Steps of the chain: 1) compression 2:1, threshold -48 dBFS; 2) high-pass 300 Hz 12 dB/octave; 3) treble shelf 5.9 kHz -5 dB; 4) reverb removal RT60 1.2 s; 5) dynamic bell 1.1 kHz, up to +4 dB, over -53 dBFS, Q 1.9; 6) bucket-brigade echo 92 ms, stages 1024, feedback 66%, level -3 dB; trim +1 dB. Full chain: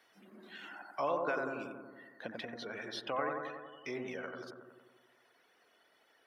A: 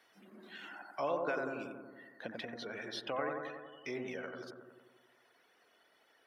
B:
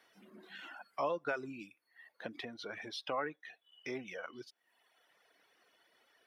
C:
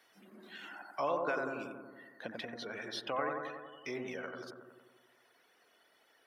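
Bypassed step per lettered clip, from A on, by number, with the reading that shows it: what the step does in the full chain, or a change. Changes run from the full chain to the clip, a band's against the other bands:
5, momentary loudness spread change -1 LU; 6, loudness change -2.0 LU; 3, 8 kHz band +2.5 dB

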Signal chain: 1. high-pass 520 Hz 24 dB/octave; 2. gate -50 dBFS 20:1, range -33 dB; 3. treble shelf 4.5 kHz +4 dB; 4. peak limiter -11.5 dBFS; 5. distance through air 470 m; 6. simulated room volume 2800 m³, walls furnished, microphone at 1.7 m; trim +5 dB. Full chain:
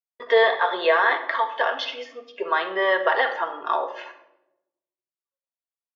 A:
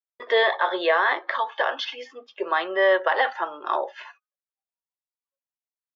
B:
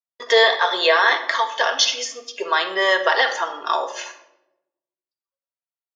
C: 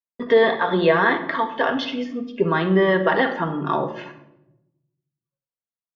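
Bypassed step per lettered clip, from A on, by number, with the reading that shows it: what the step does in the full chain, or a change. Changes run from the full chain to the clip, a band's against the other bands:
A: 6, echo-to-direct -5.0 dB to none; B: 5, 4 kHz band +9.5 dB; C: 1, 250 Hz band +17.5 dB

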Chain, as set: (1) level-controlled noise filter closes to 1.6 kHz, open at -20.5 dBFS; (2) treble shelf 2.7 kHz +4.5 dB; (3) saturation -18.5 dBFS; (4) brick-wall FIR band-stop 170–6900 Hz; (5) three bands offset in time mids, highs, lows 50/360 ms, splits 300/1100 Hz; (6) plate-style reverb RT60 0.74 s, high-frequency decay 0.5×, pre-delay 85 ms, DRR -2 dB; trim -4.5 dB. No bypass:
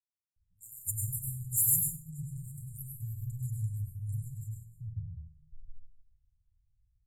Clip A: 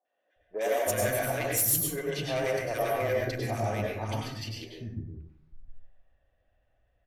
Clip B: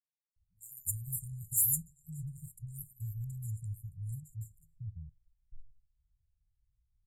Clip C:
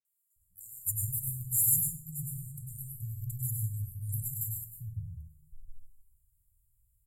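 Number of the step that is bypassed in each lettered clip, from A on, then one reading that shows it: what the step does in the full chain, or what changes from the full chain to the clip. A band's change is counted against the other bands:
4, crest factor change -4.5 dB; 6, echo-to-direct 9.5 dB to 4.5 dB; 1, crest factor change -1.5 dB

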